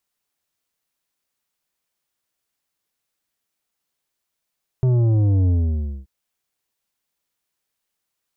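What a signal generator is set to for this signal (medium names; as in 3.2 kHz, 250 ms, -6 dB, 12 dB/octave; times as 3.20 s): sub drop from 130 Hz, over 1.23 s, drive 9 dB, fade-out 0.58 s, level -15 dB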